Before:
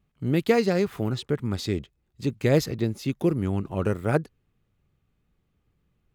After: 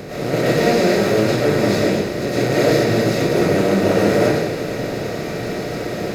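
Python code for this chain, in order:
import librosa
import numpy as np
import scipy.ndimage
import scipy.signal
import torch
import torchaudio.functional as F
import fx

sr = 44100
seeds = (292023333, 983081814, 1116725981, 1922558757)

y = fx.bin_compress(x, sr, power=0.2)
y = fx.rev_freeverb(y, sr, rt60_s=0.86, hf_ratio=0.95, predelay_ms=70, drr_db=-9.0)
y = y * librosa.db_to_amplitude(-8.0)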